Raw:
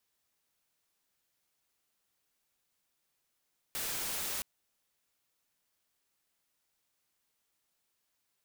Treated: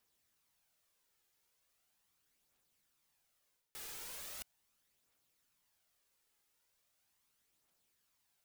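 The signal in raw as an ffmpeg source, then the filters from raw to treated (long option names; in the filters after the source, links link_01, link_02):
-f lavfi -i "anoisesrc=color=white:amplitude=0.0259:duration=0.67:sample_rate=44100:seed=1"
-af "areverse,acompressor=threshold=-48dB:ratio=5,areverse,aphaser=in_gain=1:out_gain=1:delay=2.5:decay=0.37:speed=0.39:type=triangular"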